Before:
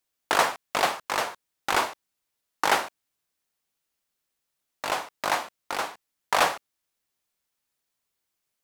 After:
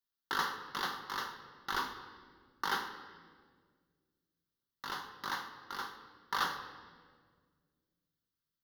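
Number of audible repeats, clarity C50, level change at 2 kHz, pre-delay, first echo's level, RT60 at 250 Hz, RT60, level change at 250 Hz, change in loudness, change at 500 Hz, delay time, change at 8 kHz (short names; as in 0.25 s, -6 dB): none, 9.5 dB, -10.0 dB, 5 ms, none, 2.5 s, 1.8 s, -10.0 dB, -11.5 dB, -19.0 dB, none, -16.0 dB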